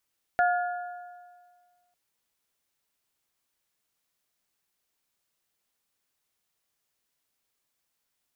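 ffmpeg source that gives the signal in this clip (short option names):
-f lavfi -i "aevalsrc='0.106*pow(10,-3*t/1.77)*sin(2*PI*712*t)+0.0596*pow(10,-3*t/1.438)*sin(2*PI*1424*t)+0.0335*pow(10,-3*t/1.361)*sin(2*PI*1708.8*t)':d=1.55:s=44100"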